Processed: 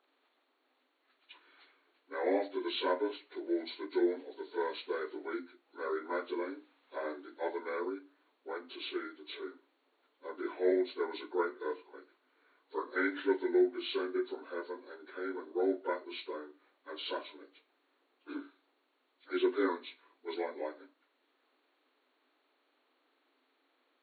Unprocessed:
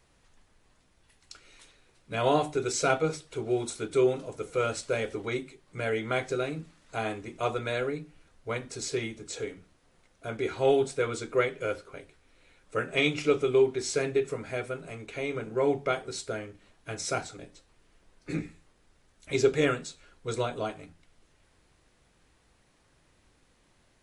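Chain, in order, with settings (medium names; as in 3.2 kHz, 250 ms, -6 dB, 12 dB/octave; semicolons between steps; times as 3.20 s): frequency axis rescaled in octaves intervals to 80%; FFT band-pass 240–4500 Hz; trim -5 dB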